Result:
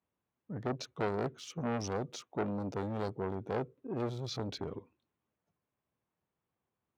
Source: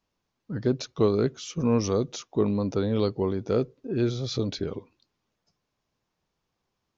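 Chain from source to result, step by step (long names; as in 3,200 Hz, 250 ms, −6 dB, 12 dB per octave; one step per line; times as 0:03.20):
adaptive Wiener filter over 9 samples
high-pass filter 64 Hz 24 dB per octave
saturating transformer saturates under 1,100 Hz
level −6.5 dB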